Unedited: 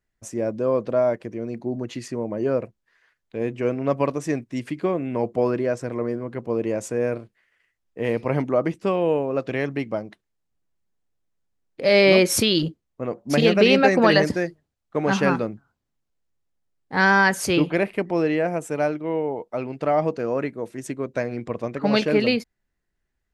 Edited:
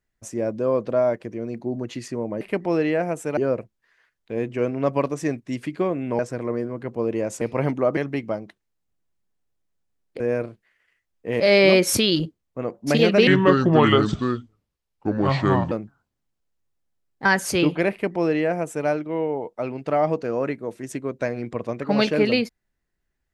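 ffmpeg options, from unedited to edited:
-filter_complex "[0:a]asplit=11[s0][s1][s2][s3][s4][s5][s6][s7][s8][s9][s10];[s0]atrim=end=2.412[s11];[s1]atrim=start=17.858:end=18.822[s12];[s2]atrim=start=2.408:end=5.232[s13];[s3]atrim=start=5.698:end=6.922[s14];[s4]atrim=start=8.118:end=8.682[s15];[s5]atrim=start=9.598:end=11.832[s16];[s6]atrim=start=6.918:end=8.122[s17];[s7]atrim=start=11.828:end=13.704[s18];[s8]atrim=start=13.7:end=15.41,asetpts=PTS-STARTPTS,asetrate=30870,aresample=44100[s19];[s9]atrim=start=15.406:end=16.952[s20];[s10]atrim=start=17.198[s21];[s11][s12]acrossfade=d=0.004:c1=hsin:c2=hsin[s22];[s22][s13]acrossfade=d=0.004:c1=hsin:c2=hsin[s23];[s23][s14]acrossfade=d=0.004:c1=hsin:c2=hsin[s24];[s24][s15]acrossfade=d=0.004:c1=hsin:c2=hsin[s25];[s25][s16]acrossfade=d=0.004:c1=hsin:c2=hsin[s26];[s26][s17]acrossfade=d=0.004:c1=hsin:c2=hsin[s27];[s27][s18]acrossfade=d=0.004:c1=hsin:c2=hsin[s28];[s28][s19]acrossfade=d=0.004:c1=hsin:c2=hsin[s29];[s29][s20]acrossfade=d=0.004:c1=hsin:c2=hsin[s30];[s30][s21]acrossfade=d=0.004:c1=hsin:c2=hsin"

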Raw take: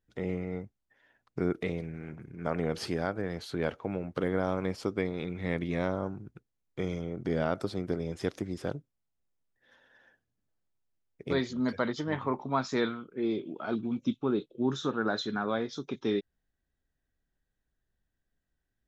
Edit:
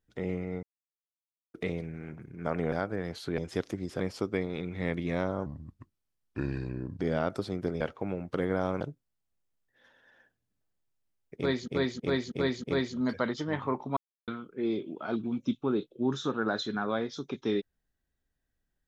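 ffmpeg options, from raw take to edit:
-filter_complex "[0:a]asplit=16[s0][s1][s2][s3][s4][s5][s6][s7][s8][s9][s10][s11][s12][s13][s14][s15];[s0]atrim=end=0.63,asetpts=PTS-STARTPTS,afade=t=out:st=0.626:d=0.004:c=hsin[s16];[s1]atrim=start=0.63:end=1.54,asetpts=PTS-STARTPTS,volume=0[s17];[s2]atrim=start=1.54:end=2.722,asetpts=PTS-STARTPTS,afade=t=in:d=0.004:c=hsin[s18];[s3]atrim=start=2.978:end=3.642[s19];[s4]atrim=start=8.058:end=8.682[s20];[s5]atrim=start=4.638:end=6.104[s21];[s6]atrim=start=6.1:end=7.26,asetpts=PTS-STARTPTS,asetrate=33075,aresample=44100[s22];[s7]atrim=start=7.256:end=8.062[s23];[s8]atrim=start=3.638:end=4.642[s24];[s9]atrim=start=8.678:end=11.552[s25];[s10]atrim=start=11.228:end=11.552[s26];[s11]atrim=start=11.228:end=11.552[s27];[s12]atrim=start=11.228:end=11.552[s28];[s13]atrim=start=11.228:end=12.56,asetpts=PTS-STARTPTS,afade=t=out:st=1.328:d=0.004:c=hsin[s29];[s14]atrim=start=12.56:end=12.87,asetpts=PTS-STARTPTS,volume=0[s30];[s15]atrim=start=12.87,asetpts=PTS-STARTPTS,afade=t=in:d=0.004:c=hsin[s31];[s16][s17][s18]concat=n=3:v=0:a=1[s32];[s32][s19]acrossfade=d=0.004:c1=hsin:c2=hsin[s33];[s33][s20]acrossfade=d=0.004:c1=hsin:c2=hsin[s34];[s34][s21]acrossfade=d=0.004:c1=hsin:c2=hsin[s35];[s35][s22]acrossfade=d=0.004:c1=hsin:c2=hsin[s36];[s36][s23]acrossfade=d=0.004:c1=hsin:c2=hsin[s37];[s37][s24]acrossfade=d=0.004:c1=hsin:c2=hsin[s38];[s38][s25]acrossfade=d=0.004:c1=hsin:c2=hsin[s39];[s39][s26]acrossfade=d=0.004:c1=hsin:c2=hsin[s40];[s40][s27]acrossfade=d=0.004:c1=hsin:c2=hsin[s41];[s41][s28]acrossfade=d=0.004:c1=hsin:c2=hsin[s42];[s29][s30][s31]concat=n=3:v=0:a=1[s43];[s42][s43]acrossfade=d=0.004:c1=hsin:c2=hsin"

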